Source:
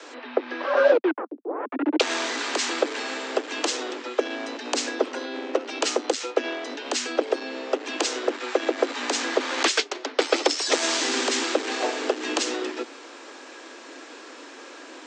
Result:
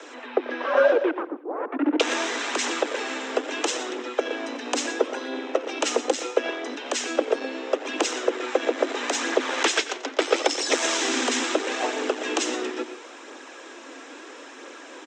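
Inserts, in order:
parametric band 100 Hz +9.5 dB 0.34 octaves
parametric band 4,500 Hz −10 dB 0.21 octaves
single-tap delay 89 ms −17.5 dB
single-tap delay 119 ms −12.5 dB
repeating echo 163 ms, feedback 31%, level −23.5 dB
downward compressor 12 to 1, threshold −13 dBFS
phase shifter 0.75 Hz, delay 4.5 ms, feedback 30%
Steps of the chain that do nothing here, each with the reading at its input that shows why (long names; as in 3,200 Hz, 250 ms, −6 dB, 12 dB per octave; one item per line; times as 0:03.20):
parametric band 100 Hz: nothing at its input below 210 Hz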